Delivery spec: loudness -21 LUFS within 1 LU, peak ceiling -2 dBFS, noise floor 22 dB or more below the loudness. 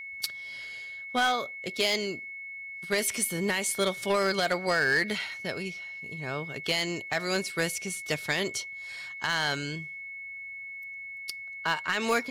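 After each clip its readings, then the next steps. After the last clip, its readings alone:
clipped samples 0.3%; clipping level -18.5 dBFS; steady tone 2.2 kHz; tone level -38 dBFS; loudness -30.0 LUFS; peak level -18.5 dBFS; loudness target -21.0 LUFS
-> clip repair -18.5 dBFS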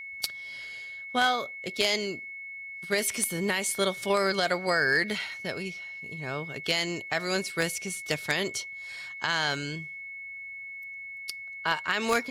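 clipped samples 0.0%; steady tone 2.2 kHz; tone level -38 dBFS
-> band-stop 2.2 kHz, Q 30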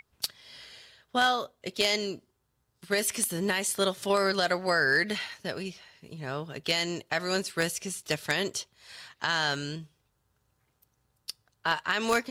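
steady tone not found; loudness -29.0 LUFS; peak level -9.0 dBFS; loudness target -21.0 LUFS
-> trim +8 dB; peak limiter -2 dBFS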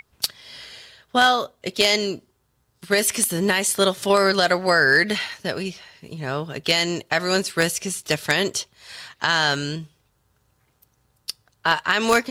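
loudness -21.0 LUFS; peak level -2.0 dBFS; noise floor -67 dBFS

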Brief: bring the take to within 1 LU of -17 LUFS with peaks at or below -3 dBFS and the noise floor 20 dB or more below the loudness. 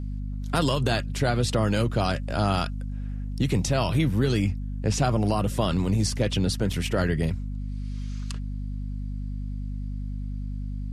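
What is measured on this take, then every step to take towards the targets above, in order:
dropouts 1; longest dropout 3.0 ms; hum 50 Hz; highest harmonic 250 Hz; hum level -28 dBFS; loudness -27.0 LUFS; peak level -9.5 dBFS; loudness target -17.0 LUFS
-> interpolate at 6.73 s, 3 ms; hum notches 50/100/150/200/250 Hz; trim +10 dB; peak limiter -3 dBFS

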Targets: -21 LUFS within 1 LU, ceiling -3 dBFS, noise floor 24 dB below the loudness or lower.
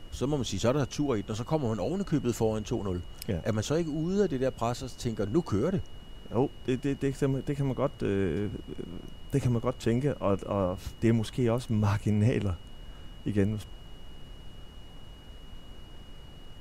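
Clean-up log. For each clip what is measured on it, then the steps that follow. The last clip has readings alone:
steady tone 2.9 kHz; tone level -56 dBFS; noise floor -47 dBFS; noise floor target -54 dBFS; loudness -30.0 LUFS; peak level -14.5 dBFS; loudness target -21.0 LUFS
-> band-stop 2.9 kHz, Q 30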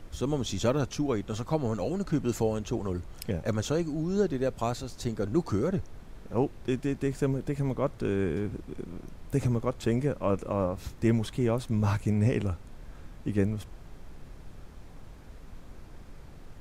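steady tone not found; noise floor -48 dBFS; noise floor target -54 dBFS
-> noise print and reduce 6 dB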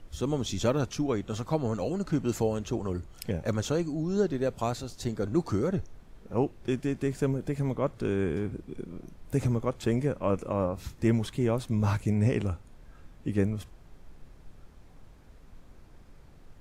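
noise floor -53 dBFS; noise floor target -54 dBFS
-> noise print and reduce 6 dB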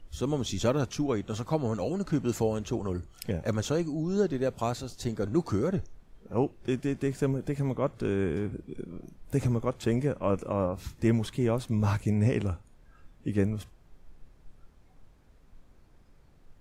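noise floor -58 dBFS; loudness -30.0 LUFS; peak level -14.5 dBFS; loudness target -21.0 LUFS
-> trim +9 dB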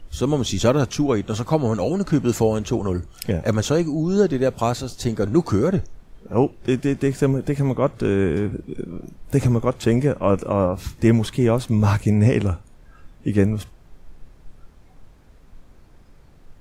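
loudness -21.0 LUFS; peak level -5.5 dBFS; noise floor -49 dBFS

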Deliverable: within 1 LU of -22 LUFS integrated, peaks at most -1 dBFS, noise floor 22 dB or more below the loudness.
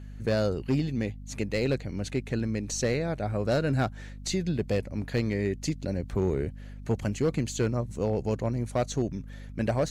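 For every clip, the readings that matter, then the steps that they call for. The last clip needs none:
clipped samples 0.7%; clipping level -19.0 dBFS; hum 50 Hz; highest harmonic 250 Hz; hum level -41 dBFS; loudness -29.5 LUFS; peak level -19.0 dBFS; loudness target -22.0 LUFS
-> clip repair -19 dBFS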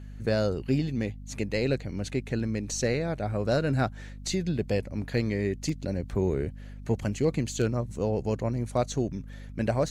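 clipped samples 0.0%; hum 50 Hz; highest harmonic 250 Hz; hum level -40 dBFS
-> hum notches 50/100/150/200/250 Hz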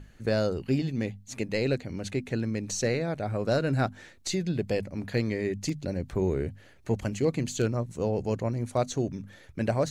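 hum not found; loudness -30.0 LUFS; peak level -14.0 dBFS; loudness target -22.0 LUFS
-> trim +8 dB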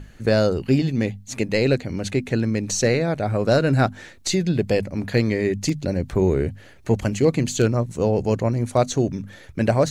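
loudness -22.0 LUFS; peak level -6.0 dBFS; noise floor -46 dBFS

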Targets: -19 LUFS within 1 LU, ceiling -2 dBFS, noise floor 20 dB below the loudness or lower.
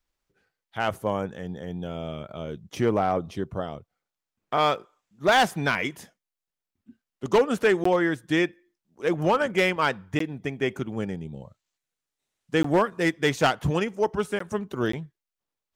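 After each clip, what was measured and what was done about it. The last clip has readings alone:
clipped samples 0.4%; clipping level -13.5 dBFS; dropouts 5; longest dropout 14 ms; loudness -26.0 LUFS; peak level -13.5 dBFS; loudness target -19.0 LUFS
-> clip repair -13.5 dBFS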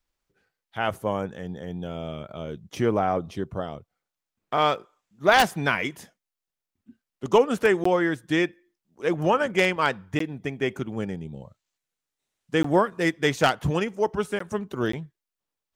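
clipped samples 0.0%; dropouts 5; longest dropout 14 ms
-> interpolate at 7.84/10.19/12.63/14.39/14.92 s, 14 ms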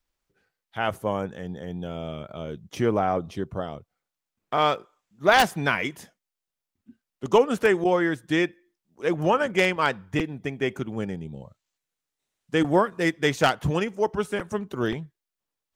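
dropouts 0; loudness -25.0 LUFS; peak level -4.5 dBFS; loudness target -19.0 LUFS
-> trim +6 dB; peak limiter -2 dBFS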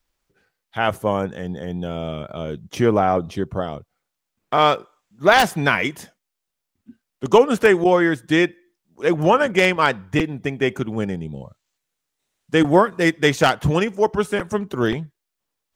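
loudness -19.5 LUFS; peak level -2.0 dBFS; noise floor -81 dBFS

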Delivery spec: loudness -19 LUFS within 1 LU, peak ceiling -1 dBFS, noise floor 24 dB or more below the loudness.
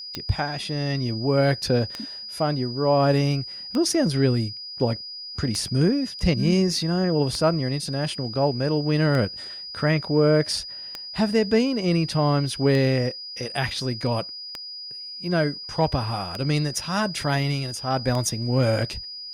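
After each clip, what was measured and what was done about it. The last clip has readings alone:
clicks found 11; steady tone 4.9 kHz; tone level -34 dBFS; loudness -24.0 LUFS; peak level -9.5 dBFS; loudness target -19.0 LUFS
-> de-click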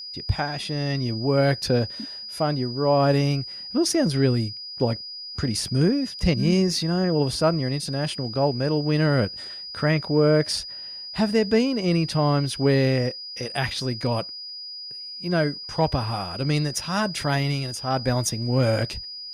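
clicks found 0; steady tone 4.9 kHz; tone level -34 dBFS
-> band-stop 4.9 kHz, Q 30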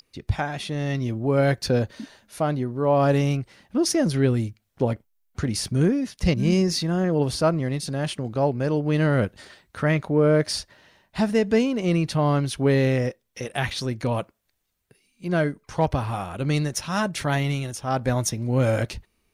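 steady tone not found; loudness -24.0 LUFS; peak level -10.0 dBFS; loudness target -19.0 LUFS
-> trim +5 dB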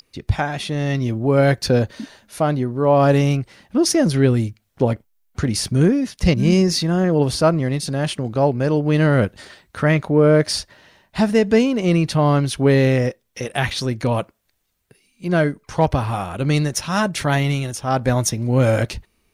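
loudness -19.0 LUFS; peak level -5.0 dBFS; noise floor -66 dBFS

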